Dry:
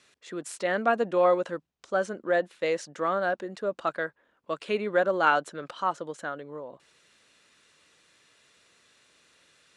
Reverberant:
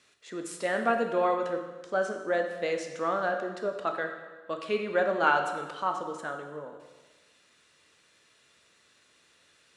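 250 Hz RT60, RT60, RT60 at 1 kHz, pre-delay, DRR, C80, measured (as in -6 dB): 1.3 s, 1.3 s, 1.2 s, 4 ms, 4.0 dB, 8.5 dB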